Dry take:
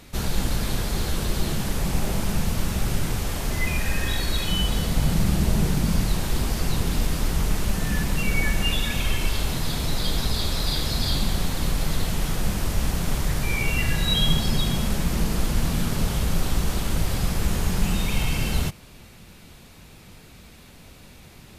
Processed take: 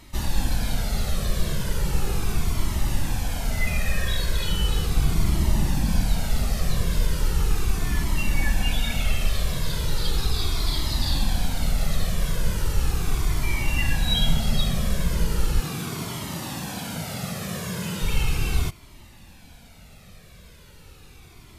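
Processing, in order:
0:15.60–0:18.02: high-pass filter 120 Hz 24 dB per octave
flanger whose copies keep moving one way falling 0.37 Hz
level +2.5 dB

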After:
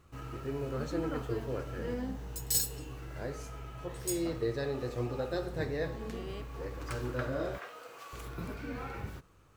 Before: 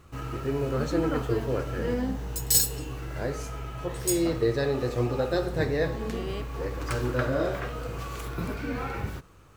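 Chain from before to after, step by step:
0:07.58–0:08.13: high-pass filter 590 Hz 12 dB per octave
level −8 dB

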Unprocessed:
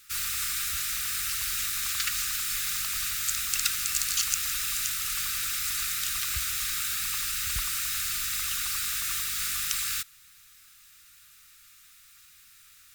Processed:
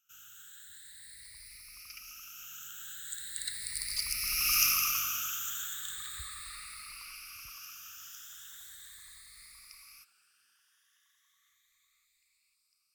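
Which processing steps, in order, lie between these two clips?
rippled gain that drifts along the octave scale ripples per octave 0.89, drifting +0.39 Hz, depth 21 dB
source passing by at 0:04.63, 17 m/s, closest 3.2 metres
echo through a band-pass that steps 503 ms, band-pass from 360 Hz, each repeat 0.7 octaves, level −6.5 dB

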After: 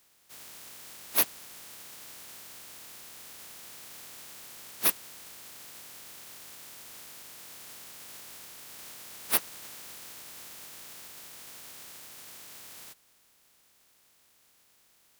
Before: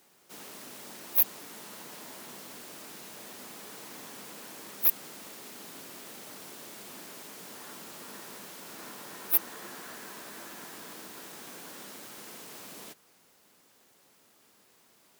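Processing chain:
ceiling on every frequency bin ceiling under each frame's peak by 24 dB
level −1 dB

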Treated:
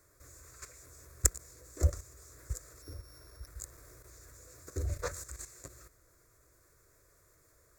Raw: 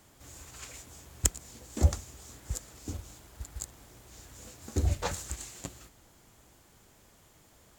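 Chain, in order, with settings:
0:02.82–0:03.47: samples sorted by size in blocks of 8 samples
output level in coarse steps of 11 dB
phaser with its sweep stopped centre 820 Hz, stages 6
level +2.5 dB

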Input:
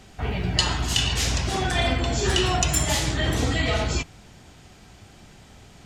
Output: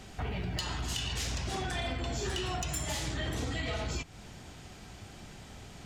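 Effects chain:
downward compressor 4 to 1, threshold −32 dBFS, peak gain reduction 13.5 dB
soft clipping −25 dBFS, distortion −20 dB

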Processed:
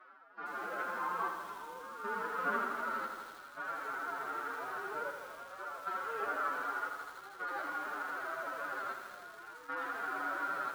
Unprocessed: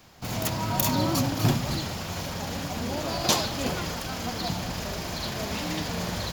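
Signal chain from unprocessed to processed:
variable-slope delta modulation 32 kbit/s
high-pass filter 380 Hz 12 dB per octave
reversed playback
upward compression, threshold −41 dBFS
reversed playback
phase-vocoder pitch shift with formants kept +8.5 semitones
low-pass with resonance 1,400 Hz, resonance Q 12
gate pattern "xxxxx...xxxx..x" 100 BPM −12 dB
flanger 1.3 Hz, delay 4.9 ms, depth 9.9 ms, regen −88%
phase-vocoder stretch with locked phases 1.7×
feedback echo at a low word length 81 ms, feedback 80%, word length 8 bits, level −7.5 dB
level −5.5 dB

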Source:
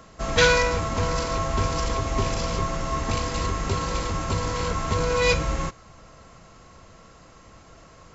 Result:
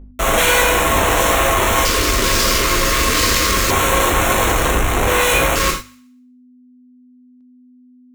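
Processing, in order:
0:04.51–0:05.08: low-shelf EQ 180 Hz +12 dB
bit reduction 6 bits
fuzz pedal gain 44 dB, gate −48 dBFS
mains hum 50 Hz, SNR 17 dB
parametric band 140 Hz −10.5 dB 1.9 octaves
mains-hum notches 50/100/150/200 Hz
feedback echo with a high-pass in the loop 121 ms, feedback 27%, high-pass 850 Hz, level −21.5 dB
convolution reverb, pre-delay 5 ms, DRR −1 dB
auto-filter notch square 0.27 Hz 770–4,800 Hz

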